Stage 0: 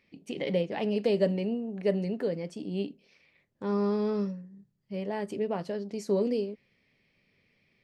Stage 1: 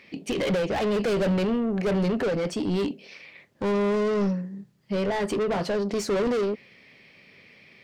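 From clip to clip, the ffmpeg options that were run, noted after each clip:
-filter_complex "[0:a]asplit=2[a][b];[b]highpass=f=720:p=1,volume=32dB,asoftclip=type=tanh:threshold=-13dB[c];[a][c]amix=inputs=2:normalize=0,lowpass=f=5.1k:p=1,volume=-6dB,lowshelf=f=260:g=8.5,volume=-7dB"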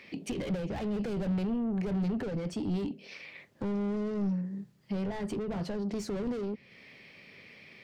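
-filter_complex "[0:a]acrossover=split=240[a][b];[b]acompressor=threshold=-41dB:ratio=3[c];[a][c]amix=inputs=2:normalize=0,asoftclip=type=tanh:threshold=-25dB"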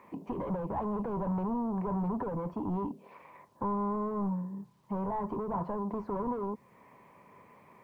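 -af "lowpass=f=1k:t=q:w=11,acrusher=bits=11:mix=0:aa=0.000001,volume=-2.5dB"

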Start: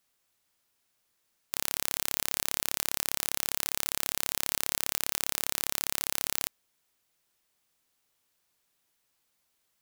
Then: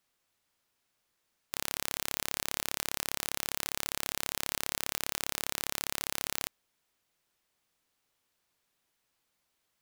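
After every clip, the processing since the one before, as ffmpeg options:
-af "highshelf=f=5.7k:g=-6"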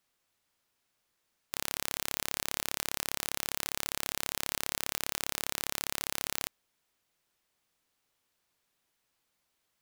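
-af anull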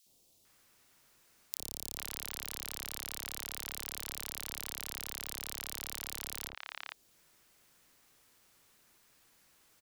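-filter_complex "[0:a]acrossover=split=88|3000|6100[a][b][c][d];[a]acompressor=threshold=-58dB:ratio=4[e];[b]acompressor=threshold=-51dB:ratio=4[f];[c]acompressor=threshold=-48dB:ratio=4[g];[d]acompressor=threshold=-42dB:ratio=4[h];[e][f][g][h]amix=inputs=4:normalize=0,acrossover=split=730|3300[i][j][k];[i]adelay=60[l];[j]adelay=450[m];[l][m][k]amix=inputs=3:normalize=0,acompressor=threshold=-51dB:ratio=2.5,volume=13dB"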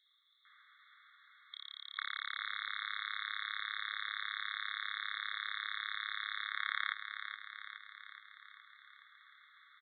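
-af "aresample=8000,aresample=44100,aecho=1:1:420|840|1260|1680|2100|2520|2940|3360:0.398|0.239|0.143|0.086|0.0516|0.031|0.0186|0.0111,afftfilt=real='re*eq(mod(floor(b*sr/1024/1100),2),1)':imag='im*eq(mod(floor(b*sr/1024/1100),2),1)':win_size=1024:overlap=0.75,volume=12dB"

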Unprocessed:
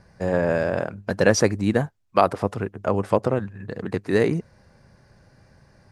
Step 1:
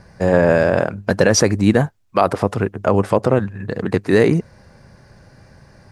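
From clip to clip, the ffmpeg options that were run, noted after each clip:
-af "alimiter=limit=-9.5dB:level=0:latency=1:release=49,volume=8dB"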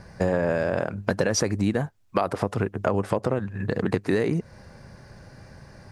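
-af "acompressor=threshold=-20dB:ratio=6"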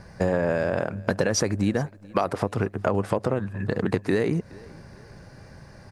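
-af "aecho=1:1:420|840|1260:0.0668|0.0274|0.0112"

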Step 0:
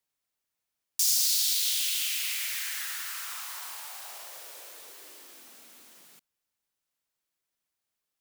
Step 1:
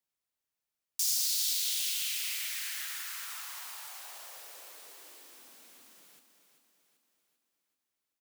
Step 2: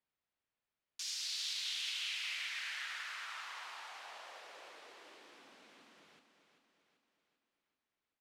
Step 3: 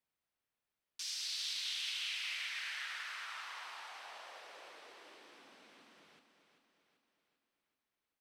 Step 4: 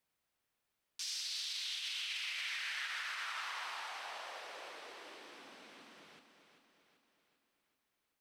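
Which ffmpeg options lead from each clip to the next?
-af "aecho=1:1:389|778|1167|1556|1945|2334:0.355|0.185|0.0959|0.0499|0.0259|0.0135,volume=-5dB"
-af "lowpass=3.1k,volume=2dB"
-af "bandreject=f=6.9k:w=14"
-af "alimiter=level_in=12.5dB:limit=-24dB:level=0:latency=1:release=64,volume=-12.5dB,volume=5dB"

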